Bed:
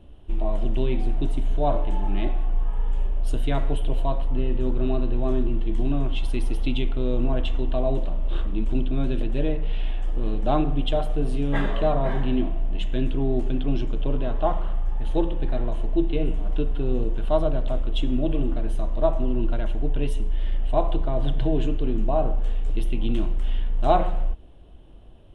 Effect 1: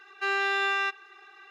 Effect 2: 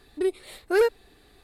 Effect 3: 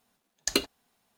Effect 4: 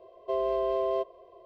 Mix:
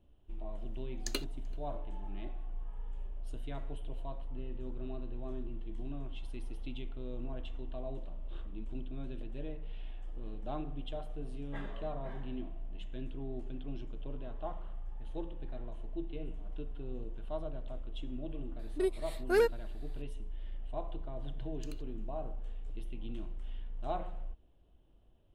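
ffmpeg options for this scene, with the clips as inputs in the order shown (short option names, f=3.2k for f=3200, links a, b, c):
-filter_complex "[3:a]asplit=2[a][b];[0:a]volume=-17.5dB[c];[a]asplit=2[d][e];[e]adelay=384.8,volume=-27dB,highshelf=f=4k:g=-8.66[f];[d][f]amix=inputs=2:normalize=0[g];[b]acompressor=threshold=-36dB:ratio=6:attack=3.2:release=140:knee=1:detection=peak[h];[g]atrim=end=1.17,asetpts=PTS-STARTPTS,volume=-11.5dB,afade=t=in:d=0.004:c=hsin,afade=t=out:st=1.166:d=0.004:c=hsin,adelay=590[i];[2:a]atrim=end=1.43,asetpts=PTS-STARTPTS,volume=-6.5dB,afade=t=in:d=0.004:c=hsin,afade=t=out:st=1.426:d=0.004:c=hsin,adelay=18590[j];[h]atrim=end=1.17,asetpts=PTS-STARTPTS,volume=-15dB,afade=t=in:d=0.004:c=hsin,afade=t=out:st=1.166:d=0.004:c=hsin,adelay=933156S[k];[c][i][j][k]amix=inputs=4:normalize=0"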